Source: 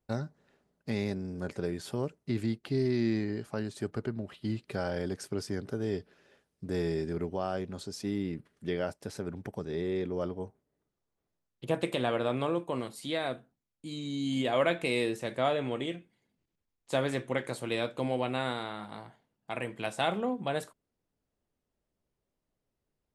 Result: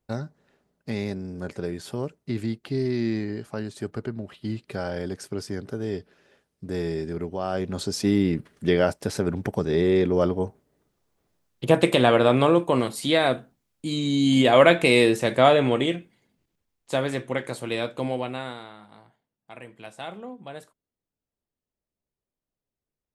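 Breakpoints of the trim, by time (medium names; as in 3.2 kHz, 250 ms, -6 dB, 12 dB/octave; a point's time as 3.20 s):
7.36 s +3 dB
7.84 s +12 dB
15.66 s +12 dB
17.04 s +4 dB
18.08 s +4 dB
18.81 s -7 dB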